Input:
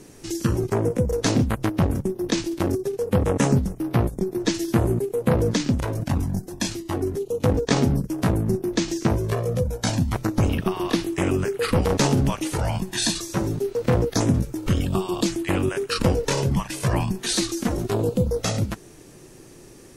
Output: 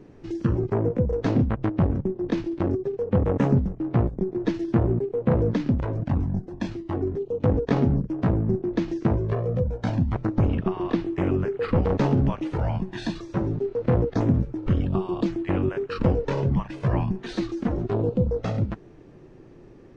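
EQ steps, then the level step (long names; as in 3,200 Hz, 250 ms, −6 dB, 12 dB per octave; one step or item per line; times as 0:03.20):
head-to-tape spacing loss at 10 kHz 39 dB
0.0 dB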